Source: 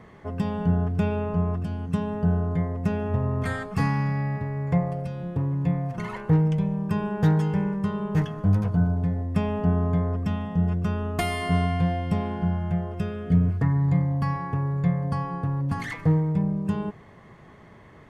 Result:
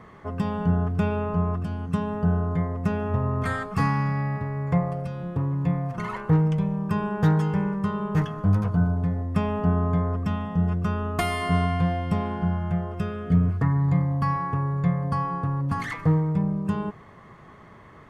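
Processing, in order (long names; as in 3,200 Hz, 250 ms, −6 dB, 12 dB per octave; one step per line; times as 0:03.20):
parametric band 1,200 Hz +7 dB 0.54 octaves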